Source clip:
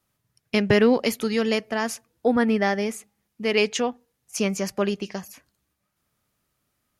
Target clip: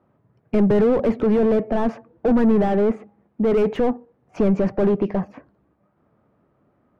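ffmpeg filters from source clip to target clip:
-filter_complex "[0:a]adynamicsmooth=sensitivity=0.5:basefreq=1.7k,asplit=2[a][b];[b]highpass=f=720:p=1,volume=34dB,asoftclip=type=tanh:threshold=-7dB[c];[a][c]amix=inputs=2:normalize=0,lowpass=f=1k:p=1,volume=-6dB,tiltshelf=f=800:g=7,volume=-6.5dB"

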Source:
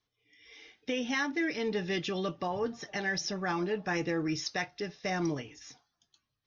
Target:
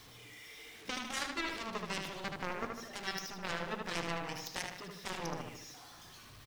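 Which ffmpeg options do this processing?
-filter_complex "[0:a]aeval=exprs='val(0)+0.5*0.01*sgn(val(0))':c=same,aeval=exprs='0.1*(cos(1*acos(clip(val(0)/0.1,-1,1)))-cos(1*PI/2))+0.0447*(cos(3*acos(clip(val(0)/0.1,-1,1)))-cos(3*PI/2))':c=same,asplit=2[a][b];[b]adelay=76,lowpass=f=4.4k:p=1,volume=-3.5dB,asplit=2[c][d];[d]adelay=76,lowpass=f=4.4k:p=1,volume=0.52,asplit=2[e][f];[f]adelay=76,lowpass=f=4.4k:p=1,volume=0.52,asplit=2[g][h];[h]adelay=76,lowpass=f=4.4k:p=1,volume=0.52,asplit=2[i][j];[j]adelay=76,lowpass=f=4.4k:p=1,volume=0.52,asplit=2[k][l];[l]adelay=76,lowpass=f=4.4k:p=1,volume=0.52,asplit=2[m][n];[n]adelay=76,lowpass=f=4.4k:p=1,volume=0.52[o];[a][c][e][g][i][k][m][o]amix=inputs=8:normalize=0"

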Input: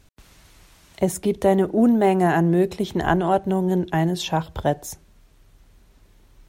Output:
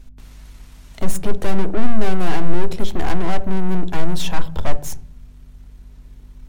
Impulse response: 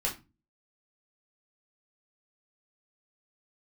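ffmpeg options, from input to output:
-filter_complex "[0:a]aeval=exprs='(tanh(28.2*val(0)+0.8)-tanh(0.8))/28.2':c=same,aeval=exprs='val(0)+0.002*(sin(2*PI*50*n/s)+sin(2*PI*2*50*n/s)/2+sin(2*PI*3*50*n/s)/3+sin(2*PI*4*50*n/s)/4+sin(2*PI*5*50*n/s)/5)':c=same,asplit=2[a][b];[b]aemphasis=mode=reproduction:type=riaa[c];[1:a]atrim=start_sample=2205,asetrate=22491,aresample=44100[d];[c][d]afir=irnorm=-1:irlink=0,volume=-24dB[e];[a][e]amix=inputs=2:normalize=0,volume=6dB"

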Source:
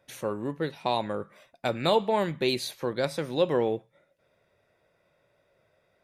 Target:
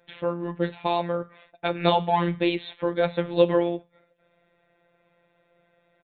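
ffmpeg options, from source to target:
-af "aresample=8000,aresample=44100,afftfilt=real='hypot(re,im)*cos(PI*b)':imag='0':win_size=1024:overlap=0.75,volume=7dB"

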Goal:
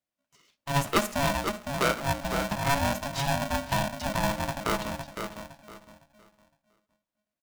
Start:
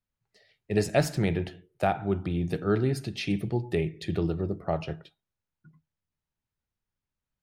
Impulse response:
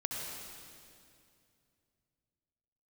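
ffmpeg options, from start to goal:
-filter_complex "[0:a]highpass=110,asetrate=58866,aresample=44100,atempo=0.749154,asplit=2[a][b];[b]adelay=510,lowpass=f=1.3k:p=1,volume=-5.5dB,asplit=2[c][d];[d]adelay=510,lowpass=f=1.3k:p=1,volume=0.29,asplit=2[e][f];[f]adelay=510,lowpass=f=1.3k:p=1,volume=0.29,asplit=2[g][h];[h]adelay=510,lowpass=f=1.3k:p=1,volume=0.29[i];[a][c][e][g][i]amix=inputs=5:normalize=0,asplit=2[j][k];[1:a]atrim=start_sample=2205,atrim=end_sample=3087[l];[k][l]afir=irnorm=-1:irlink=0,volume=-8dB[m];[j][m]amix=inputs=2:normalize=0,aeval=exprs='val(0)*sgn(sin(2*PI*420*n/s))':c=same,volume=-3dB"

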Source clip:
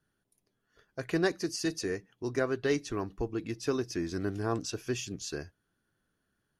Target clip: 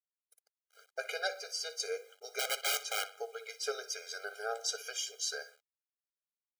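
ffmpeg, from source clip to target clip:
-filter_complex "[0:a]asettb=1/sr,asplit=3[a][b][c];[a]atrim=end=1.274[d];[b]atrim=start=1.27:end=1.8,asetpts=PTS-STARTPTS,afade=t=in:d=0.004:c=qsin,afade=t=out:st=0.526:d=0.004:c=qsin,highshelf=f=4.3k:g=-9.5[e];[c]atrim=start=1.796[f];[d][e]acrossfade=d=0.004:c1=hsin:c2=qsin[g];[g][f]acrossfade=d=0.004:c1=qsin:c2=hsin,asplit=2[h][i];[i]acompressor=threshold=-37dB:ratio=6,volume=1.5dB[j];[h][j]amix=inputs=2:normalize=0,asettb=1/sr,asplit=3[k][l][m];[k]atrim=end=2.394[n];[l]atrim=start=2.39:end=3.08,asetpts=PTS-STARTPTS,afade=t=in:d=0.004:c=qsin,afade=t=out:st=0.686:d=0.004:c=qsin,aeval=exprs='(mod(15.8*val(0)+1,2)-1)/15.8':c=same[o];[m]atrim=start=3.076[p];[n][o]acrossfade=d=0.004:c1=hsin:c2=qsin[q];[q][p]acrossfade=d=0.004:c1=qsin:c2=hsin,highpass=f=1.2k:p=1,asplit=2[r][s];[s]adelay=61,lowpass=f=4.9k:p=1,volume=-14.5dB,asplit=2[t][u];[u]adelay=61,lowpass=f=4.9k:p=1,volume=0.45,asplit=2[v][w];[w]adelay=61,lowpass=f=4.9k:p=1,volume=0.45,asplit=2[x][y];[y]adelay=61,lowpass=f=4.9k:p=1,volume=0.45[z];[r][t][v][x][z]amix=inputs=5:normalize=0,flanger=delay=4.8:depth=9.2:regen=74:speed=0.36:shape=sinusoidal,acrusher=bits=10:mix=0:aa=0.000001,afftfilt=real='re*eq(mod(floor(b*sr/1024/410),2),1)':imag='im*eq(mod(floor(b*sr/1024/410),2),1)':win_size=1024:overlap=0.75,volume=7dB"

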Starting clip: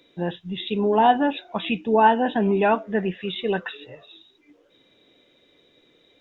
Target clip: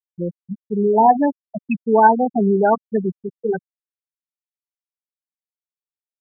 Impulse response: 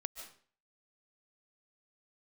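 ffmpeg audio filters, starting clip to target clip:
-af "anlmdn=39.8,afftfilt=real='re*gte(hypot(re,im),0.355)':imag='im*gte(hypot(re,im),0.355)':win_size=1024:overlap=0.75,volume=4.5dB"

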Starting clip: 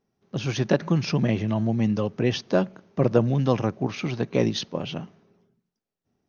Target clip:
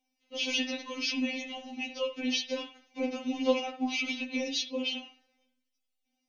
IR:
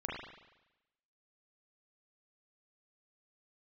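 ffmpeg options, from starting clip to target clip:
-filter_complex "[0:a]highshelf=f=1.9k:t=q:w=3:g=8.5,alimiter=limit=-11.5dB:level=0:latency=1:release=41,flanger=delay=5.2:depth=2.4:regen=57:speed=0.33:shape=sinusoidal,asplit=2[a][b];[1:a]atrim=start_sample=2205,afade=t=out:st=0.15:d=0.01,atrim=end_sample=7056[c];[b][c]afir=irnorm=-1:irlink=0,volume=-4dB[d];[a][d]amix=inputs=2:normalize=0,afftfilt=real='re*3.46*eq(mod(b,12),0)':imag='im*3.46*eq(mod(b,12),0)':win_size=2048:overlap=0.75,volume=-4dB"

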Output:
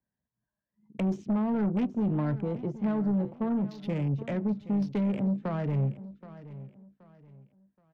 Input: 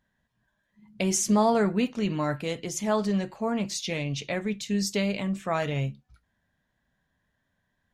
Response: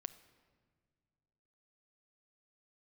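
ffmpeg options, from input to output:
-filter_complex "[0:a]highpass=60,afwtdn=0.0158,acrossover=split=330|1200[a][b][c];[b]alimiter=level_in=1dB:limit=-24dB:level=0:latency=1,volume=-1dB[d];[a][d][c]amix=inputs=3:normalize=0,acrossover=split=300|770|4600[e][f][g][h];[e]acompressor=threshold=-27dB:ratio=4[i];[f]acompressor=threshold=-42dB:ratio=4[j];[g]acompressor=threshold=-46dB:ratio=4[k];[h]acompressor=threshold=-47dB:ratio=4[l];[i][j][k][l]amix=inputs=4:normalize=0,asplit=2[m][n];[n]aeval=exprs='0.15*sin(PI/2*3.55*val(0)/0.15)':c=same,volume=-12dB[o];[m][o]amix=inputs=2:normalize=0,atempo=1,adynamicsmooth=sensitivity=1.5:basefreq=1.2k,aecho=1:1:775|1550|2325:0.158|0.0507|0.0162,volume=-2dB"

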